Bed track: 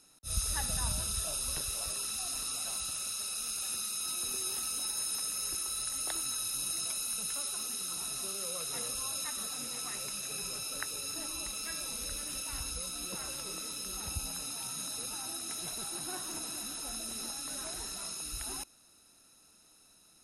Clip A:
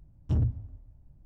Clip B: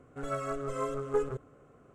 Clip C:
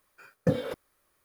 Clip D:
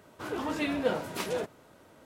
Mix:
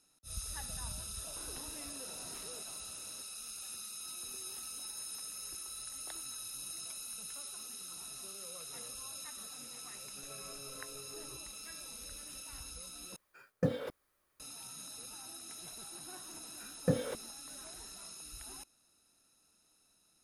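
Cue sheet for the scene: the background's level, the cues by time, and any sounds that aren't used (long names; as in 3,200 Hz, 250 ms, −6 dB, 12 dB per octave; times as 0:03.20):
bed track −9 dB
0:01.17: mix in D −5 dB + downward compressor, threshold −46 dBFS
0:10.00: mix in B −17.5 dB + brickwall limiter −27.5 dBFS
0:13.16: overwrite with C −6 dB
0:16.41: mix in C −5 dB
not used: A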